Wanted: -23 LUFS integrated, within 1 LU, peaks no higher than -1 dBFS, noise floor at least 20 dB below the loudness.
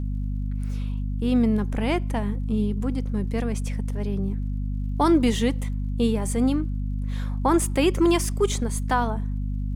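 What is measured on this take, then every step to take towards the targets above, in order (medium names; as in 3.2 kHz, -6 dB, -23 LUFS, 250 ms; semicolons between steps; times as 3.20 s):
tick rate 46 per s; hum 50 Hz; highest harmonic 250 Hz; hum level -24 dBFS; loudness -25.0 LUFS; peak level -8.5 dBFS; loudness target -23.0 LUFS
-> de-click; de-hum 50 Hz, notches 5; trim +2 dB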